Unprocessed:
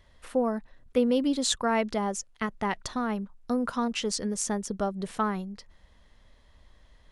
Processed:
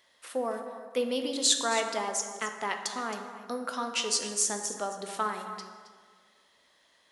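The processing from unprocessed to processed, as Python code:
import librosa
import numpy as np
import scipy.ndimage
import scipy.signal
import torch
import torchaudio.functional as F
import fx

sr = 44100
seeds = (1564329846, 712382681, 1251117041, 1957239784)

y = scipy.signal.sosfilt(scipy.signal.butter(2, 360.0, 'highpass', fs=sr, output='sos'), x)
y = fx.high_shelf(y, sr, hz=2300.0, db=9.0)
y = y + 10.0 ** (-13.5 / 20.0) * np.pad(y, (int(269 * sr / 1000.0), 0))[:len(y)]
y = fx.rev_plate(y, sr, seeds[0], rt60_s=1.7, hf_ratio=0.55, predelay_ms=0, drr_db=5.0)
y = F.gain(torch.from_numpy(y), -4.0).numpy()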